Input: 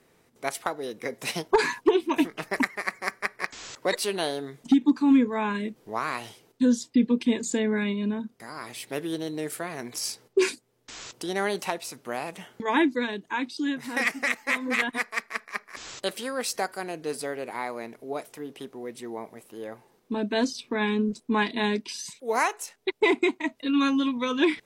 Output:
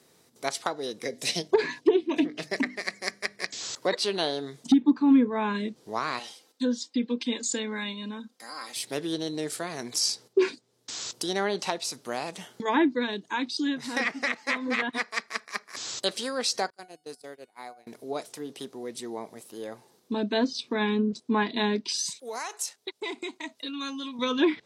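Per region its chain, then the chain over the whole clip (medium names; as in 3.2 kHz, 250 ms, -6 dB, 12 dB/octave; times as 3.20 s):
1.04–3.61 s: high-order bell 1.1 kHz -9 dB 1.1 oct + hum notches 50/100/150/200/250/300 Hz
6.19–8.76 s: high-pass 730 Hz 6 dB/octave + treble shelf 5 kHz -5 dB + comb 3.8 ms, depth 55%
16.70–17.87 s: gate -34 dBFS, range -23 dB + feedback comb 730 Hz, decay 0.43 s, mix 70%
22.18–24.19 s: compression 3:1, threshold -31 dBFS + bass shelf 380 Hz -8 dB
whole clip: low-pass that closes with the level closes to 2.1 kHz, closed at -20.5 dBFS; high-pass 90 Hz; resonant high shelf 3.2 kHz +6.5 dB, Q 1.5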